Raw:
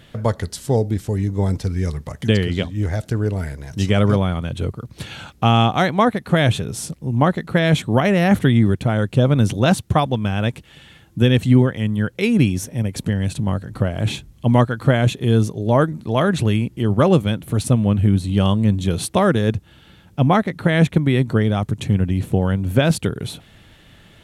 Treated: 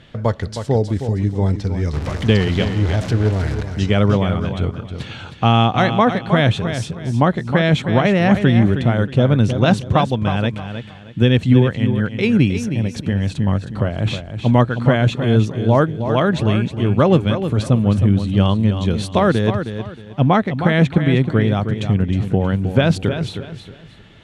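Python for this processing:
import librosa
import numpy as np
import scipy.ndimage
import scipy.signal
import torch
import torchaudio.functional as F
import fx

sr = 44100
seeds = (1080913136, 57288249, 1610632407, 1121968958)

y = fx.zero_step(x, sr, step_db=-23.5, at=(1.93, 3.63))
y = scipy.signal.sosfilt(scipy.signal.butter(2, 5300.0, 'lowpass', fs=sr, output='sos'), y)
y = fx.echo_feedback(y, sr, ms=314, feedback_pct=28, wet_db=-9.0)
y = F.gain(torch.from_numpy(y), 1.0).numpy()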